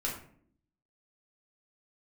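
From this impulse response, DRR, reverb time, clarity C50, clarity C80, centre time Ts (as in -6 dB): -3.5 dB, 0.60 s, 5.5 dB, 9.5 dB, 31 ms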